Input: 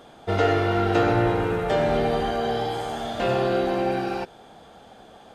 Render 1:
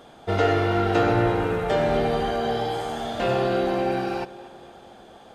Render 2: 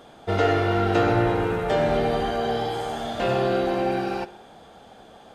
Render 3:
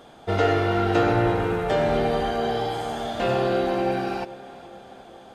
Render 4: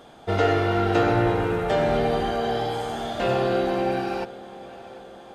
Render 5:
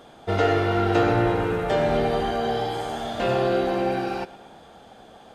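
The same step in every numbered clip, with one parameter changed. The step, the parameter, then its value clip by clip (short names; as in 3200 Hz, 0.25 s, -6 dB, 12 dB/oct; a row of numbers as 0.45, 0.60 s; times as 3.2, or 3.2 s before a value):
tape echo, time: 236, 64, 426, 744, 117 ms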